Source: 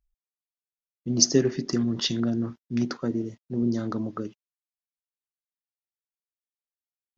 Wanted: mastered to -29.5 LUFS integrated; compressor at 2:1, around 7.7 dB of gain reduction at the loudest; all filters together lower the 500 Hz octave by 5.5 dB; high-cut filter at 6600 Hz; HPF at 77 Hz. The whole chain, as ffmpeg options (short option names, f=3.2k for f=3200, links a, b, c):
-af "highpass=77,lowpass=6.6k,equalizer=f=500:t=o:g=-8.5,acompressor=threshold=-31dB:ratio=2,volume=4dB"